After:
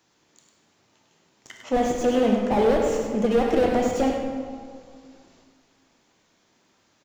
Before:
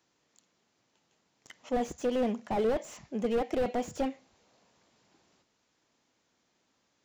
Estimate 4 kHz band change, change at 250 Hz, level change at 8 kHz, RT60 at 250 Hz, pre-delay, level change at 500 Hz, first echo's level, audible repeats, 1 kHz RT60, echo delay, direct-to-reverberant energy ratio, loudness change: +9.5 dB, +10.0 dB, +9.0 dB, 2.2 s, 11 ms, +9.5 dB, -7.0 dB, 1, 1.8 s, 0.101 s, 0.0 dB, +9.5 dB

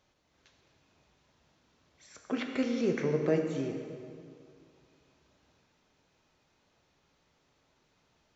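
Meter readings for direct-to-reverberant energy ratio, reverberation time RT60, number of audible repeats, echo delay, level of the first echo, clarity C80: 3.0 dB, 2.3 s, none, none, none, 6.0 dB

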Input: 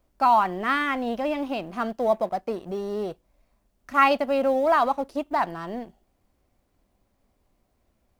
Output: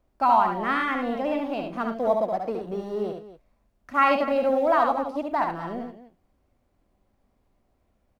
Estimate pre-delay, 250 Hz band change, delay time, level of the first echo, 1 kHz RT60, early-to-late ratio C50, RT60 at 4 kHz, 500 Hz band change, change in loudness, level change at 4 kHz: none, +0.5 dB, 71 ms, -4.5 dB, none, none, none, 0.0 dB, 0.0 dB, -3.5 dB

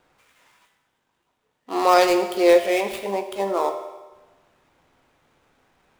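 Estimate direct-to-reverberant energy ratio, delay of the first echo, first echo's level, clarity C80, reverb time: 7.0 dB, none, none, 11.0 dB, 1.2 s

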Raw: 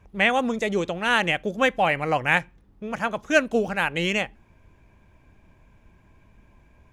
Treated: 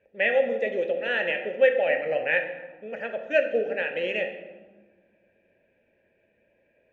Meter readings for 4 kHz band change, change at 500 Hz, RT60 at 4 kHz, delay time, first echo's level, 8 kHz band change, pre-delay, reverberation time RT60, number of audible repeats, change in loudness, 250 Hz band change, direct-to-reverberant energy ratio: -8.5 dB, +2.5 dB, 0.80 s, none, none, under -25 dB, 3 ms, 1.5 s, none, -2.0 dB, -12.0 dB, 4.0 dB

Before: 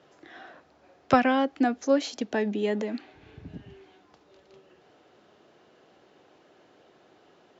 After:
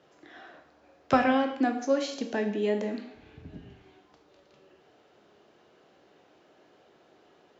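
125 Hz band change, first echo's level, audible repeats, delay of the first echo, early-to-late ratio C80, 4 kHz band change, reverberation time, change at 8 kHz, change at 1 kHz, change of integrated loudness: -2.0 dB, none, none, none, 11.5 dB, -2.0 dB, 0.75 s, n/a, -2.0 dB, -1.5 dB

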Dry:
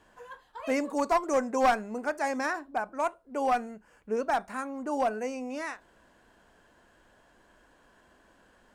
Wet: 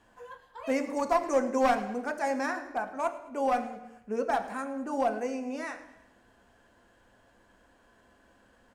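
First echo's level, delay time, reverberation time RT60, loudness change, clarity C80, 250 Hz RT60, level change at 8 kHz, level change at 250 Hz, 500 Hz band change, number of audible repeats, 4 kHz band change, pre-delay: -18.5 dB, 0.107 s, 0.85 s, -0.5 dB, 12.0 dB, 0.85 s, -2.0 dB, +0.5 dB, +0.5 dB, 3, -2.0 dB, 3 ms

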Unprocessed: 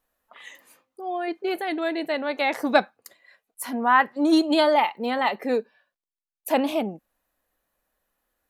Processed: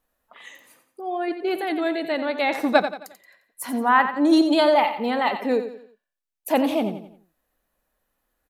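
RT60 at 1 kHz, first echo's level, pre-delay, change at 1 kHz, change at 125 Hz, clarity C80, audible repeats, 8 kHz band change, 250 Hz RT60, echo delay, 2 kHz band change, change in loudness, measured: none, -10.0 dB, none, +1.0 dB, n/a, none, 4, +0.5 dB, none, 88 ms, +0.5 dB, +1.5 dB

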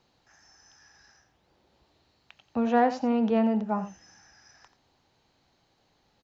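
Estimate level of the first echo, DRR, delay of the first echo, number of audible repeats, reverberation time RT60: -13.0 dB, none, 86 ms, 1, none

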